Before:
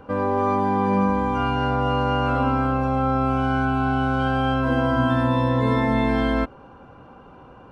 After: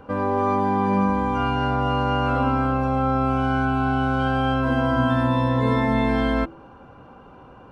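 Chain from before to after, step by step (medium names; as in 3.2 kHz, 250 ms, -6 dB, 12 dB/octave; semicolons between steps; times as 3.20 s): de-hum 165 Hz, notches 3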